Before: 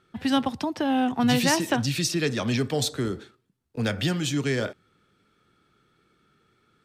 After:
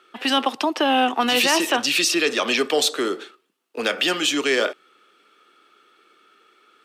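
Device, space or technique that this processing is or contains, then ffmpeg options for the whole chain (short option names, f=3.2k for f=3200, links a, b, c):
laptop speaker: -af "highpass=f=330:w=0.5412,highpass=f=330:w=1.3066,equalizer=f=1.2k:t=o:w=0.24:g=6,equalizer=f=2.8k:t=o:w=0.48:g=7.5,alimiter=limit=-17dB:level=0:latency=1:release=20,volume=8dB"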